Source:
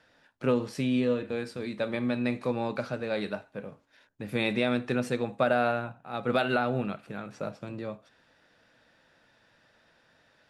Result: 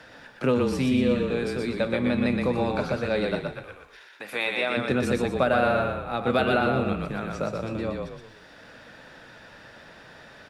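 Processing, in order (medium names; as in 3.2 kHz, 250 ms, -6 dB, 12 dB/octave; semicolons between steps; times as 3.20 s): 3.46–4.76 s: high-pass 1.4 kHz -> 590 Hz 12 dB/octave; frequency-shifting echo 121 ms, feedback 35%, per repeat -32 Hz, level -3.5 dB; three bands compressed up and down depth 40%; trim +3.5 dB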